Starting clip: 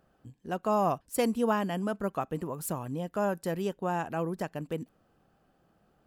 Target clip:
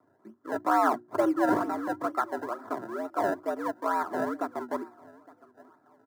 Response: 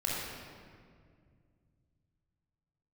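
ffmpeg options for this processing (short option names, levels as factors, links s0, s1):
-filter_complex "[0:a]asettb=1/sr,asplit=3[s0][s1][s2];[s0]atrim=end=1.654[s3];[s1]atrim=start=1.65:end=4.08,asetpts=PTS-STARTPTS,afade=t=in:d=0.004:c=qsin,afade=t=out:st=2.426:d=0.004:c=qsin,highpass=210,lowpass=4800[s4];[s2]atrim=start=4.076[s5];[s3][s4]acrossfade=d=0.004:c1=hsin:c2=qsin[s6];[s6][s5]acrossfade=d=0.004:c1=qsin:c2=hsin,aecho=1:1:862|1724:0.0794|0.0238,acrusher=samples=28:mix=1:aa=0.000001:lfo=1:lforange=28:lforate=2.2,afreqshift=94,highshelf=f=1900:t=q:w=3:g=-11.5,bandreject=f=60:t=h:w=6,bandreject=f=120:t=h:w=6,bandreject=f=180:t=h:w=6,bandreject=f=240:t=h:w=6,bandreject=f=300:t=h:w=6,bandreject=f=360:t=h:w=6,aecho=1:1:3:0.47"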